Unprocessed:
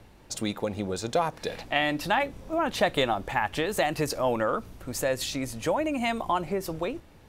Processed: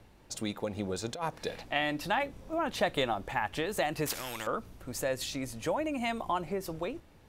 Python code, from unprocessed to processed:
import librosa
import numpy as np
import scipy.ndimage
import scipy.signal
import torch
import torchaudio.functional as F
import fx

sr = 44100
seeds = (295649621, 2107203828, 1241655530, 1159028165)

y = fx.over_compress(x, sr, threshold_db=-27.0, ratio=-0.5, at=(0.75, 1.51))
y = fx.spectral_comp(y, sr, ratio=4.0, at=(4.06, 4.47))
y = F.gain(torch.from_numpy(y), -5.0).numpy()